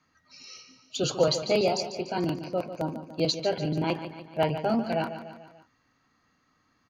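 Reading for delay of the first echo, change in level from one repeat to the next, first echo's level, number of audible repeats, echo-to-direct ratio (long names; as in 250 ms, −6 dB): 146 ms, −5.5 dB, −11.0 dB, 4, −9.5 dB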